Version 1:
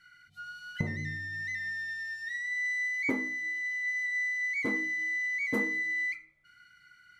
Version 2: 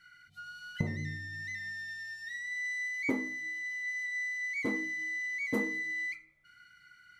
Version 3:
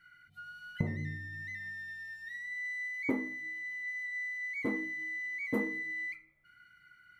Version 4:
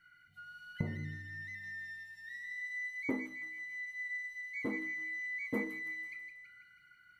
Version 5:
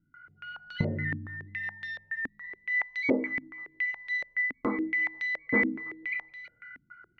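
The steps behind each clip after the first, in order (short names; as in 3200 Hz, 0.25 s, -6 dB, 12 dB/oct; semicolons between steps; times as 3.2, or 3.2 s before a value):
dynamic EQ 1700 Hz, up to -5 dB, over -46 dBFS, Q 1.4
bell 5700 Hz -12 dB 1.5 oct
thin delay 0.163 s, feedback 54%, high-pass 2100 Hz, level -5 dB; gain -3.5 dB
stepped low-pass 7.1 Hz 260–3900 Hz; gain +7 dB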